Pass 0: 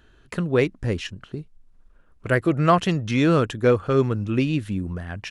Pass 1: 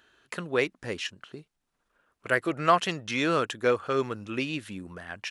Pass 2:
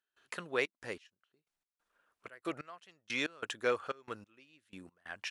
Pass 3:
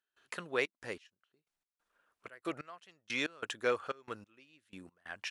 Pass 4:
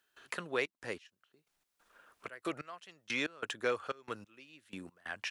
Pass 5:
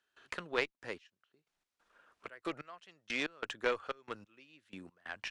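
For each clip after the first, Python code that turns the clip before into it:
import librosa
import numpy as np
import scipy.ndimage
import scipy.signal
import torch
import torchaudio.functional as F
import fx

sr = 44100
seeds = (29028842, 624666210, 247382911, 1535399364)

y1 = fx.highpass(x, sr, hz=820.0, slope=6)
y2 = fx.low_shelf(y1, sr, hz=310.0, db=-11.0)
y2 = fx.step_gate(y2, sr, bpm=92, pattern='.xxx.x...x', floor_db=-24.0, edge_ms=4.5)
y2 = y2 * librosa.db_to_amplitude(-4.5)
y3 = y2
y4 = fx.band_squash(y3, sr, depth_pct=40)
y4 = y4 * librosa.db_to_amplitude(1.0)
y5 = fx.cheby_harmonics(y4, sr, harmonics=(2, 4, 7), levels_db=(-8, -26, -25), full_scale_db=-16.5)
y5 = scipy.signal.sosfilt(scipy.signal.bessel(2, 6000.0, 'lowpass', norm='mag', fs=sr, output='sos'), y5)
y5 = y5 * librosa.db_to_amplitude(1.0)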